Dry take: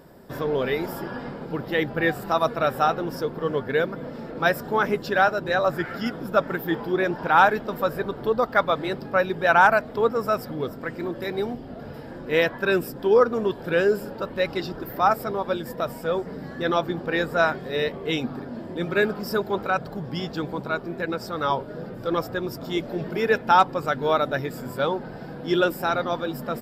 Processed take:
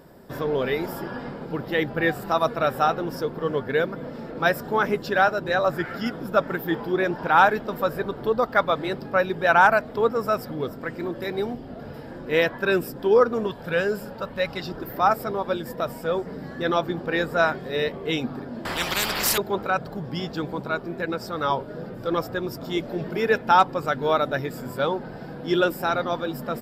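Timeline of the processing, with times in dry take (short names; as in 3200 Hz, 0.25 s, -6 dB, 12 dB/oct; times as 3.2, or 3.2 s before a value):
13.46–14.67 bell 350 Hz -9.5 dB 0.52 oct
18.65–19.38 spectral compressor 10:1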